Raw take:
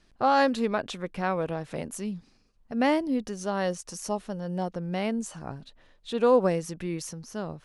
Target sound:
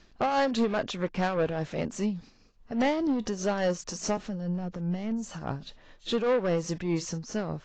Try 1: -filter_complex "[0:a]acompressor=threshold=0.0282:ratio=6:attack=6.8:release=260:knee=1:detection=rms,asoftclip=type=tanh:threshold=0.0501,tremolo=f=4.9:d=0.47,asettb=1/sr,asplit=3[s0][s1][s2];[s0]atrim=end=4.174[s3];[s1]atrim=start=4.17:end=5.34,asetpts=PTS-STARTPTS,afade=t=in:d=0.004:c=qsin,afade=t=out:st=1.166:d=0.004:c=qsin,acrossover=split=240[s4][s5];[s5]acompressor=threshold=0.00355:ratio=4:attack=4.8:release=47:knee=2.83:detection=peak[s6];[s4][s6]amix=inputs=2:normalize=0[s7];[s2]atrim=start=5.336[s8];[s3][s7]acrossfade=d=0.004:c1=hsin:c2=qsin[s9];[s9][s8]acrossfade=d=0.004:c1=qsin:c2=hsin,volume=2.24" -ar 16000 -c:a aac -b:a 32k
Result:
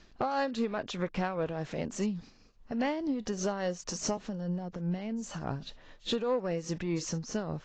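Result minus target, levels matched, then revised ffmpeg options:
compression: peak gain reduction +8.5 dB
-filter_complex "[0:a]acompressor=threshold=0.0891:ratio=6:attack=6.8:release=260:knee=1:detection=rms,asoftclip=type=tanh:threshold=0.0501,tremolo=f=4.9:d=0.47,asettb=1/sr,asplit=3[s0][s1][s2];[s0]atrim=end=4.174[s3];[s1]atrim=start=4.17:end=5.34,asetpts=PTS-STARTPTS,afade=t=in:d=0.004:c=qsin,afade=t=out:st=1.166:d=0.004:c=qsin,acrossover=split=240[s4][s5];[s5]acompressor=threshold=0.00355:ratio=4:attack=4.8:release=47:knee=2.83:detection=peak[s6];[s4][s6]amix=inputs=2:normalize=0[s7];[s2]atrim=start=5.336[s8];[s3][s7]acrossfade=d=0.004:c1=hsin:c2=qsin[s9];[s9][s8]acrossfade=d=0.004:c1=qsin:c2=hsin,volume=2.24" -ar 16000 -c:a aac -b:a 32k

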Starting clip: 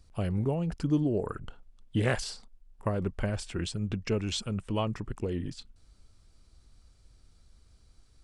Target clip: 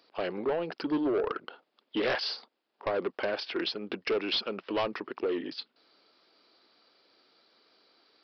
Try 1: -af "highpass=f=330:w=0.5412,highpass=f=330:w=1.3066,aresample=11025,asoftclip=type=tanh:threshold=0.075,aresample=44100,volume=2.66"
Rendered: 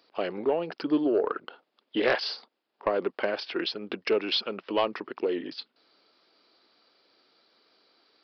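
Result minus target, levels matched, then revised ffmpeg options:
saturation: distortion -9 dB
-af "highpass=f=330:w=0.5412,highpass=f=330:w=1.3066,aresample=11025,asoftclip=type=tanh:threshold=0.0251,aresample=44100,volume=2.66"

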